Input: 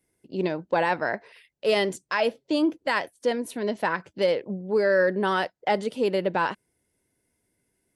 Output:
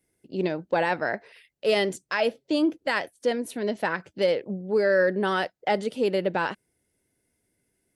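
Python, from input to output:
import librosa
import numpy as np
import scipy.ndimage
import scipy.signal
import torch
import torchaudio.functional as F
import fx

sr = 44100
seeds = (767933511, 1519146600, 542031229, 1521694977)

y = fx.peak_eq(x, sr, hz=1000.0, db=-5.5, octaves=0.29)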